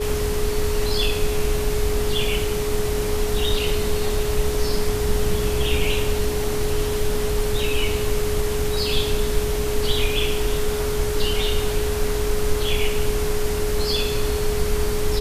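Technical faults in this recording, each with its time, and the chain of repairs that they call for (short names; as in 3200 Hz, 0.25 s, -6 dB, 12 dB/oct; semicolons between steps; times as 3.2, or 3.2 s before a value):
tone 420 Hz -24 dBFS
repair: notch 420 Hz, Q 30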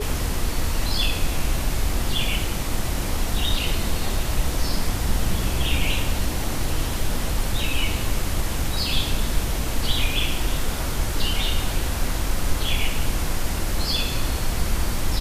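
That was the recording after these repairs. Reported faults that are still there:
none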